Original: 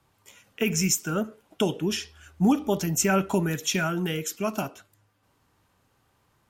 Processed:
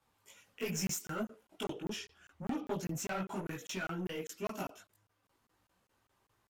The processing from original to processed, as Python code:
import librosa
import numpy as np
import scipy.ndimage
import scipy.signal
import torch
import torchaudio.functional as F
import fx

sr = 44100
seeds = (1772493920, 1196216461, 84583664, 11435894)

y = 10.0 ** (-24.0 / 20.0) * np.tanh(x / 10.0 ** (-24.0 / 20.0))
y = fx.low_shelf(y, sr, hz=180.0, db=-6.0)
y = fx.chorus_voices(y, sr, voices=4, hz=1.4, base_ms=19, depth_ms=3.0, mix_pct=55)
y = fx.high_shelf(y, sr, hz=3800.0, db=-7.0, at=(1.64, 4.38))
y = fx.buffer_crackle(y, sr, first_s=0.87, period_s=0.2, block=1024, kind='zero')
y = F.gain(torch.from_numpy(y), -4.0).numpy()